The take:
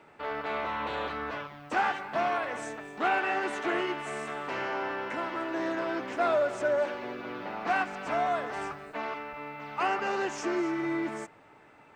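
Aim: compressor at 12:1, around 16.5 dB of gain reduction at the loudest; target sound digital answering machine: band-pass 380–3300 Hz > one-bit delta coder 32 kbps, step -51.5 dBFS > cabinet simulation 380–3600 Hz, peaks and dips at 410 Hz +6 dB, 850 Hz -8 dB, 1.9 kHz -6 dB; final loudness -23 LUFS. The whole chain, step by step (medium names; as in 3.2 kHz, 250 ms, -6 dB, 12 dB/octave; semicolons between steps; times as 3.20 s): compression 12:1, threshold -40 dBFS; band-pass 380–3300 Hz; one-bit delta coder 32 kbps, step -51.5 dBFS; cabinet simulation 380–3600 Hz, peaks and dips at 410 Hz +6 dB, 850 Hz -8 dB, 1.9 kHz -6 dB; trim +24 dB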